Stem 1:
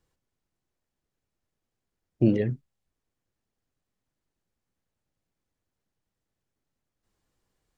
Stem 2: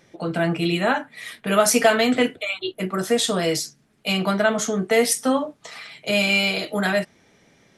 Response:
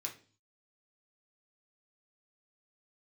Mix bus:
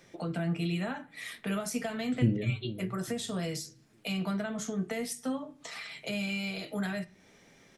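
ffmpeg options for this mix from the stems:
-filter_complex "[0:a]volume=0.5dB,asplit=3[a][b][c];[b]volume=-5.5dB[d];[c]volume=-14.5dB[e];[1:a]volume=-4dB,asplit=2[f][g];[g]volume=-7.5dB[h];[2:a]atrim=start_sample=2205[i];[d][h]amix=inputs=2:normalize=0[j];[j][i]afir=irnorm=-1:irlink=0[k];[e]aecho=0:1:427|854|1281|1708:1|0.29|0.0841|0.0244[l];[a][f][k][l]amix=inputs=4:normalize=0,acrossover=split=190[m][n];[n]acompressor=threshold=-38dB:ratio=4[o];[m][o]amix=inputs=2:normalize=0"

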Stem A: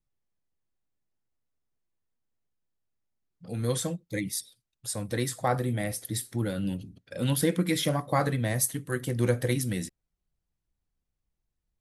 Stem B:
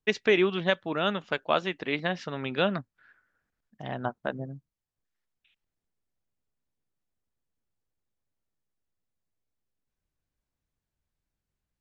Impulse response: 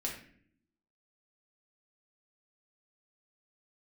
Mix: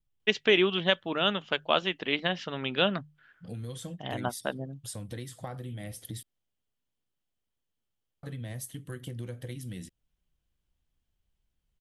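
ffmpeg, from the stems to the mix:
-filter_complex "[0:a]lowshelf=f=210:g=8.5,acompressor=threshold=-32dB:ratio=6,volume=-4.5dB,asplit=3[a][b][c];[a]atrim=end=6.23,asetpts=PTS-STARTPTS,afade=t=out:st=6.226:d=0.004:c=hsin[d];[b]atrim=start=6.23:end=8.23,asetpts=PTS-STARTPTS,volume=0[e];[c]atrim=start=8.23,asetpts=PTS-STARTPTS,afade=t=in:d=0.004:c=hsin[f];[d][e][f]concat=n=3:v=0:a=1[g];[1:a]bandreject=f=50:t=h:w=6,bandreject=f=100:t=h:w=6,bandreject=f=150:t=h:w=6,adelay=200,volume=-1dB[h];[g][h]amix=inputs=2:normalize=0,equalizer=f=3.1k:w=3.8:g=10"

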